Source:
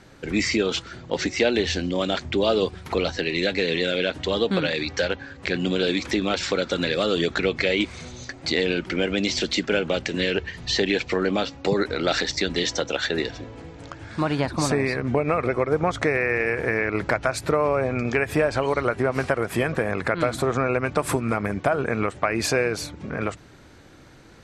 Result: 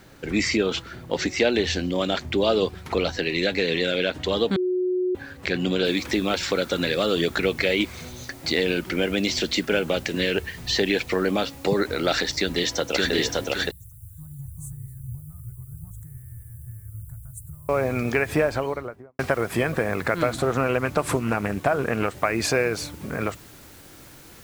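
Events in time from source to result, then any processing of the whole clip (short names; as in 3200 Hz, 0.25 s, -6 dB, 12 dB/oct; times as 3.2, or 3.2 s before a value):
0.57–1.1 tone controls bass +1 dB, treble -5 dB
4.56–5.15 bleep 365 Hz -20.5 dBFS
5.85 noise floor step -63 dB -50 dB
12.37–13.12 echo throw 0.57 s, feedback 35%, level -1 dB
13.71–17.69 inverse Chebyshev band-stop 230–5300 Hz
18.34–19.19 studio fade out
20.32–22.18 Doppler distortion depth 0.22 ms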